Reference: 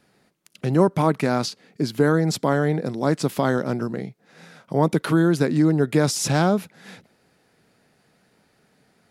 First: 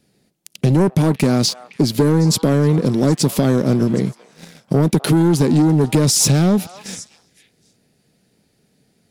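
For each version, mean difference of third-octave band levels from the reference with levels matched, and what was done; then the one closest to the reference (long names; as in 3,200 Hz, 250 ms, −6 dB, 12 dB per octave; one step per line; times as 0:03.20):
4.5 dB: parametric band 1,200 Hz −14.5 dB 1.9 octaves
leveller curve on the samples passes 2
downward compressor 4 to 1, threshold −20 dBFS, peak gain reduction 6.5 dB
on a send: echo through a band-pass that steps 256 ms, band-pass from 960 Hz, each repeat 1.4 octaves, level −11 dB
on the sum: level +8 dB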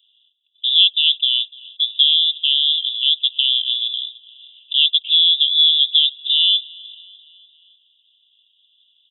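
24.5 dB: on a send: repeating echo 297 ms, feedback 57%, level −24 dB
on the sum: voice inversion scrambler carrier 3,700 Hz
Chebyshev high-pass filter 2,800 Hz, order 8
level +4 dB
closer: first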